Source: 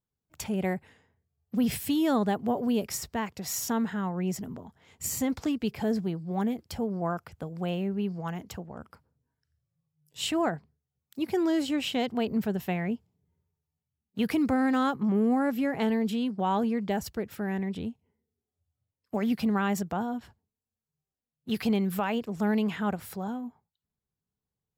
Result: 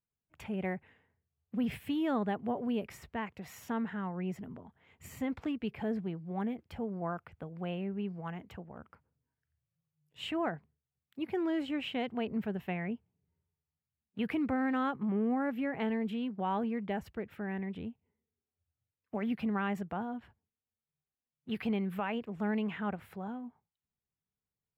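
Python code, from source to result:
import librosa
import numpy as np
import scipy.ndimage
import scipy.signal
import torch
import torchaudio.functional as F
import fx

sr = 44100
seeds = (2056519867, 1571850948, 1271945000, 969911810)

y = fx.high_shelf_res(x, sr, hz=3700.0, db=-13.0, q=1.5)
y = y * 10.0 ** (-6.5 / 20.0)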